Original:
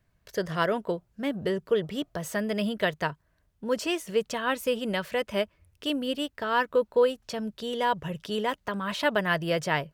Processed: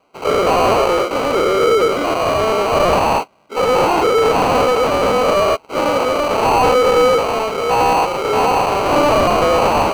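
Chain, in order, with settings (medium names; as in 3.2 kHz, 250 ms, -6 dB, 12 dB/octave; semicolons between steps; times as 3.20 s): every event in the spectrogram widened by 240 ms; high-pass 330 Hz 24 dB/octave; sample-and-hold 25×; overdrive pedal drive 21 dB, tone 2.2 kHz, clips at -8.5 dBFS; trim +3.5 dB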